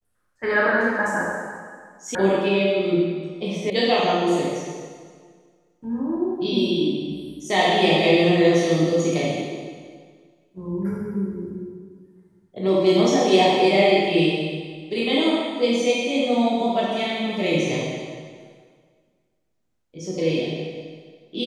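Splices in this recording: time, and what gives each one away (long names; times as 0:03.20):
0:02.15: cut off before it has died away
0:03.70: cut off before it has died away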